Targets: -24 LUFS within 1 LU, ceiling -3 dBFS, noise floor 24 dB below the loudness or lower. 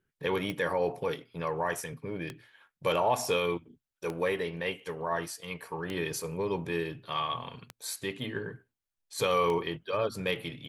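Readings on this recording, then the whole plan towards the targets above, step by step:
clicks found 6; loudness -32.5 LUFS; peak level -15.0 dBFS; loudness target -24.0 LUFS
-> de-click; trim +8.5 dB

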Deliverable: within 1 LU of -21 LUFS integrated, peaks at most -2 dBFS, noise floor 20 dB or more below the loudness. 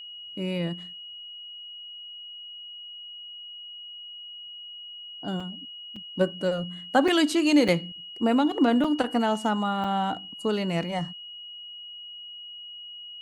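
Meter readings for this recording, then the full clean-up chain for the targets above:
dropouts 6; longest dropout 4.3 ms; steady tone 2.9 kHz; tone level -39 dBFS; loudness -26.0 LUFS; peak level -9.0 dBFS; loudness target -21.0 LUFS
-> interpolate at 5.40/5.96/7.08/7.68/8.84/9.84 s, 4.3 ms; band-stop 2.9 kHz, Q 30; trim +5 dB

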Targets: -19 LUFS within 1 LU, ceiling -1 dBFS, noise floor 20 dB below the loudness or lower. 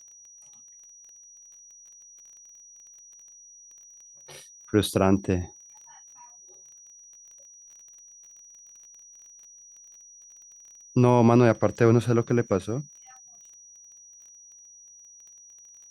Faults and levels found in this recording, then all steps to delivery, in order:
tick rate 20 per s; steady tone 5.8 kHz; tone level -48 dBFS; loudness -23.0 LUFS; peak level -6.0 dBFS; loudness target -19.0 LUFS
-> de-click; band-stop 5.8 kHz, Q 30; trim +4 dB

